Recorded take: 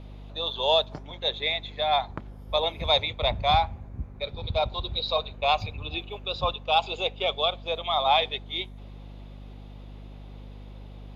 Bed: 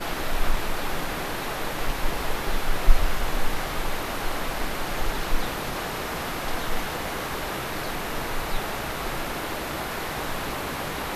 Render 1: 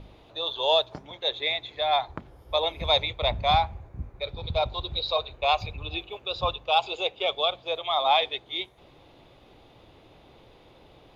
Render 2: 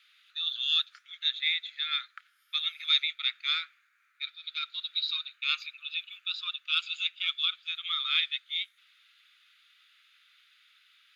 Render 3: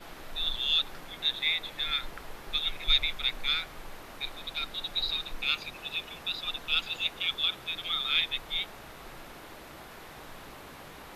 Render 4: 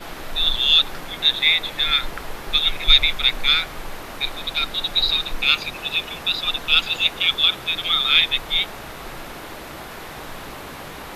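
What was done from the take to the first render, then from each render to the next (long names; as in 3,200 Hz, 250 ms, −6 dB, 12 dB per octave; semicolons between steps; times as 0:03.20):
hum removal 50 Hz, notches 5
Butterworth high-pass 1,300 Hz 96 dB per octave; parametric band 5,600 Hz −3 dB 0.24 octaves
mix in bed −16.5 dB
level +11.5 dB; brickwall limiter −1 dBFS, peak gain reduction 1 dB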